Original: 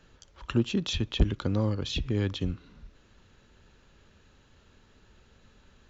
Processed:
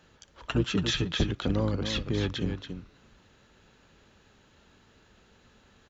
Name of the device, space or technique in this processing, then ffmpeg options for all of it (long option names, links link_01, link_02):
octave pedal: -filter_complex "[0:a]highpass=frequency=120:poles=1,asettb=1/sr,asplit=3[link_01][link_02][link_03];[link_01]atrim=end=0.474[link_04];[link_02]atrim=start=0.47:end=1.11,asetpts=PTS-STARTPTS,afade=type=in:duration=0.004:curve=qsin,afade=type=out:start_time=0.636:duration=0.004:curve=qsin,aecho=1:1:6.7:0.74,atrim=end_sample=28224[link_05];[link_03]atrim=start=1.106[link_06];[link_04][link_05]acrossfade=duration=0.004:curve1=hsin:curve2=qsin[link_07];[link_07][link_06]acrossfade=duration=0.004:curve1=qsin:curve2=hsin,aecho=1:1:281:0.398,asplit=2[link_08][link_09];[link_09]asetrate=22050,aresample=44100,atempo=2,volume=-8dB[link_10];[link_08][link_10]amix=inputs=2:normalize=0,volume=1dB"